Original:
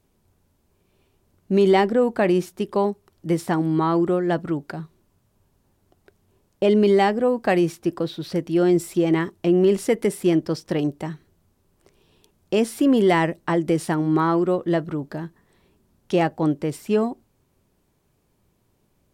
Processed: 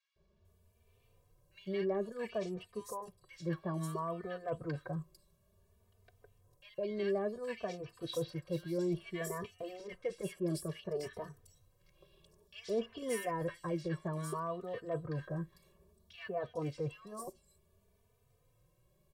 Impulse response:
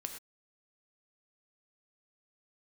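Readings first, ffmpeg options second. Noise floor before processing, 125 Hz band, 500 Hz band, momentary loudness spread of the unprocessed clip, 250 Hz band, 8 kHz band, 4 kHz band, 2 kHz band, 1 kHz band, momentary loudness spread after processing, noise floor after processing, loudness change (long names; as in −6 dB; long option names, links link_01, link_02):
−67 dBFS, −14.0 dB, −17.0 dB, 11 LU, −20.5 dB, −11.5 dB, −15.0 dB, −17.0 dB, −18.0 dB, 11 LU, −73 dBFS, −18.0 dB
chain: -filter_complex "[0:a]aecho=1:1:1.8:0.84,areverse,acompressor=threshold=-28dB:ratio=4,areverse,acrossover=split=1500|5400[link_01][link_02][link_03];[link_01]adelay=160[link_04];[link_03]adelay=450[link_05];[link_04][link_02][link_05]amix=inputs=3:normalize=0,asplit=2[link_06][link_07];[link_07]adelay=3.2,afreqshift=0.58[link_08];[link_06][link_08]amix=inputs=2:normalize=1,volume=-4.5dB"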